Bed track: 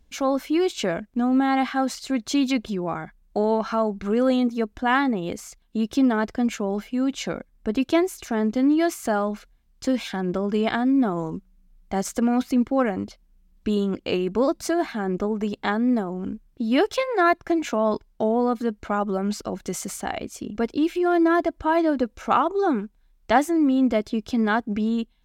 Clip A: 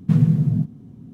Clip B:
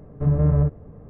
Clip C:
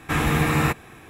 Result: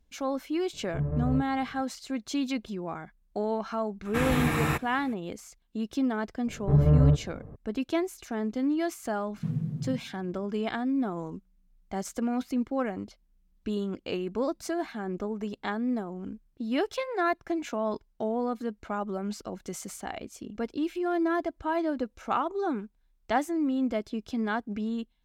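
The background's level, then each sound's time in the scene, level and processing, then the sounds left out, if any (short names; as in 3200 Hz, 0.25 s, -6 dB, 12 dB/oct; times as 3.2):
bed track -8 dB
0.73 add B -10.5 dB
4.05 add C -6 dB
6.47 add B -1.5 dB
9.34 add A -15 dB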